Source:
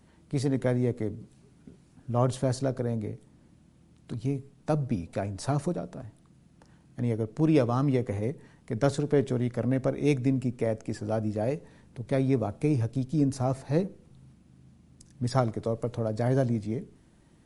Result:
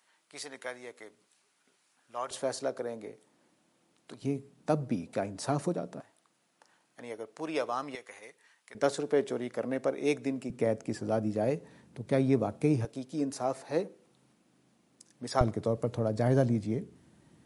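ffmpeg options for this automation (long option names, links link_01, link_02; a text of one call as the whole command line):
ffmpeg -i in.wav -af "asetnsamples=nb_out_samples=441:pad=0,asendcmd='2.31 highpass f 470;4.22 highpass f 190;6 highpass f 690;7.95 highpass f 1400;8.75 highpass f 370;10.5 highpass f 140;12.85 highpass f 380;15.41 highpass f 93',highpass=1100" out.wav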